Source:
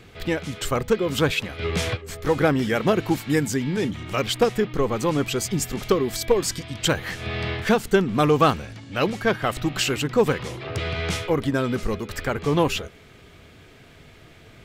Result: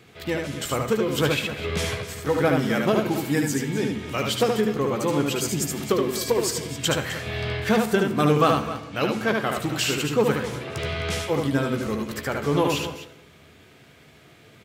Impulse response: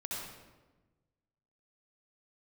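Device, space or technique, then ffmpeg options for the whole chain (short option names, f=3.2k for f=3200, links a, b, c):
keyed gated reverb: -filter_complex "[0:a]highpass=100,highshelf=f=9.8k:g=5,asplit=2[a][b];[b]adelay=14,volume=-10.5dB[c];[a][c]amix=inputs=2:normalize=0,asplit=3[d][e][f];[1:a]atrim=start_sample=2205[g];[e][g]afir=irnorm=-1:irlink=0[h];[f]apad=whole_len=646554[i];[h][i]sidechaingate=range=-33dB:threshold=-45dB:ratio=16:detection=peak,volume=-12dB[j];[d][j]amix=inputs=2:normalize=0,aecho=1:1:74|259:0.631|0.211,volume=-4dB"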